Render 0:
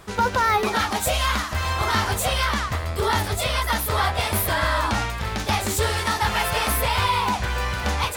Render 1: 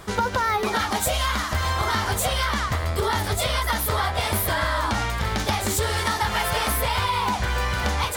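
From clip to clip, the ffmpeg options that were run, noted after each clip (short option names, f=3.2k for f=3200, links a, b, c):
-af "bandreject=f=2.6k:w=16,acompressor=threshold=-24dB:ratio=6,volume=4dB"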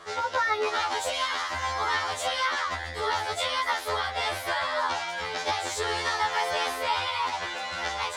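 -filter_complex "[0:a]acrossover=split=350 7400:gain=0.1 1 0.0631[a][b][c];[a][b][c]amix=inputs=3:normalize=0,afftfilt=real='re*2*eq(mod(b,4),0)':imag='im*2*eq(mod(b,4),0)':win_size=2048:overlap=0.75"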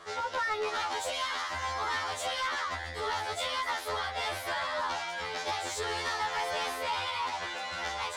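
-af "asoftclip=type=tanh:threshold=-22.5dB,volume=-3dB"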